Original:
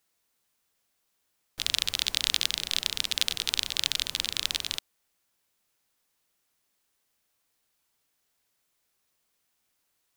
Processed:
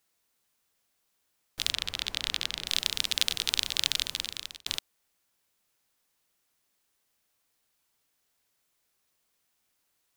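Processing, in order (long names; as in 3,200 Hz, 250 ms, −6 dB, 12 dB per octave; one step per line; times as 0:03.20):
0:01.72–0:02.67: high-shelf EQ 4,100 Hz −11 dB
0:03.97–0:04.66: fade out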